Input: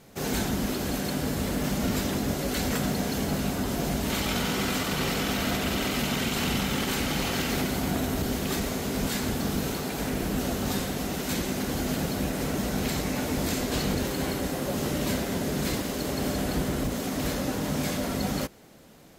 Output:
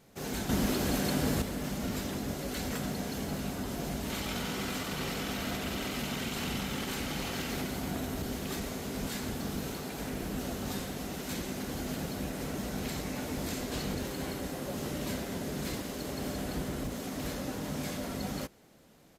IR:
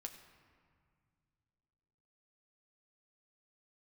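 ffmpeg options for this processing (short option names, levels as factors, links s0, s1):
-filter_complex "[0:a]asettb=1/sr,asplit=3[s0][s1][s2];[s0]atrim=end=0.494[s3];[s1]atrim=start=0.49:end=1.42,asetpts=PTS-STARTPTS,afade=t=in:d=0.004:c=qsin,afade=t=out:st=0.926:d=0.004:c=qsin,acontrast=80[s4];[s2]atrim=start=1.416[s5];[s3][s4]acrossfade=d=0.004:c1=hsin:c2=qsin[s6];[s6][s5]acrossfade=d=0.004:c1=qsin:c2=hsin,aresample=32000,aresample=44100,volume=0.422"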